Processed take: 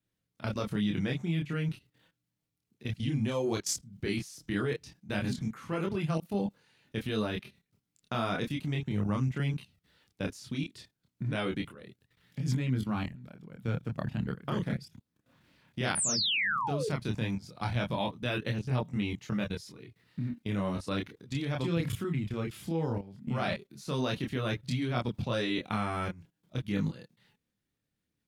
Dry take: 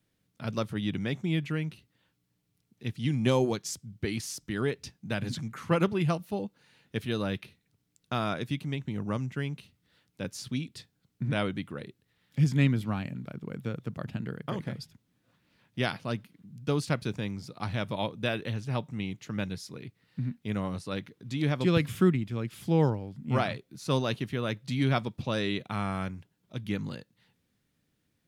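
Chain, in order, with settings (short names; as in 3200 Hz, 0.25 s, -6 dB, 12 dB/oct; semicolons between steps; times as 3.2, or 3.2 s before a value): painted sound fall, 15.95–16.89, 400–10000 Hz -27 dBFS; level quantiser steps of 18 dB; chorus voices 2, 0.16 Hz, delay 27 ms, depth 3.6 ms; gain +8.5 dB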